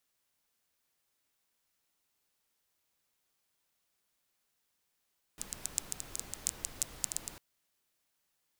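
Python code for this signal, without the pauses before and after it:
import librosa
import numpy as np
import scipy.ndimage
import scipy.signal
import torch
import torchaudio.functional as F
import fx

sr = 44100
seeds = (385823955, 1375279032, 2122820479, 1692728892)

y = fx.rain(sr, seeds[0], length_s=2.0, drops_per_s=9.0, hz=7500.0, bed_db=-9.0)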